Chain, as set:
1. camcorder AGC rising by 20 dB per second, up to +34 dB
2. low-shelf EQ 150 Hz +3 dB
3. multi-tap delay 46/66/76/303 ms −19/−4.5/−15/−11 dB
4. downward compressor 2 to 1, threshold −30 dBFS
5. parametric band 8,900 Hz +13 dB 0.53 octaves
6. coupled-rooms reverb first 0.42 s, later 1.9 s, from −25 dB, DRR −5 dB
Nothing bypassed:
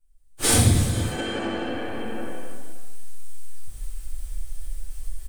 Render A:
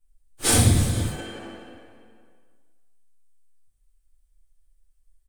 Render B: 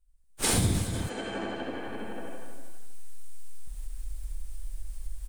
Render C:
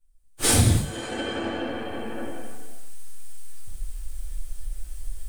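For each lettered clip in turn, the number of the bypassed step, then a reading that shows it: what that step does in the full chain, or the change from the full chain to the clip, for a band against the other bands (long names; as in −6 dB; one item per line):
1, change in crest factor +5.0 dB
6, change in integrated loudness −9.0 LU
3, change in integrated loudness −1.5 LU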